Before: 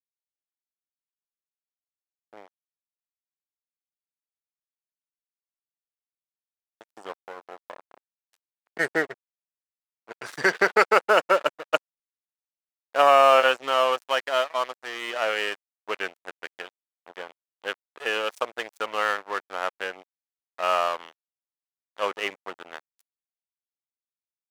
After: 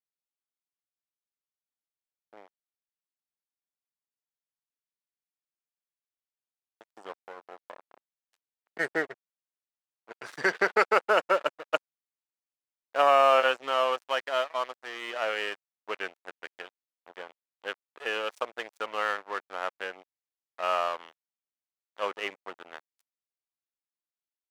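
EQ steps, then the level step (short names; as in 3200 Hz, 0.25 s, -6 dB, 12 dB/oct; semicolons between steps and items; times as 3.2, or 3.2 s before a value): low shelf 71 Hz -11 dB; high shelf 6100 Hz -6 dB; -4.0 dB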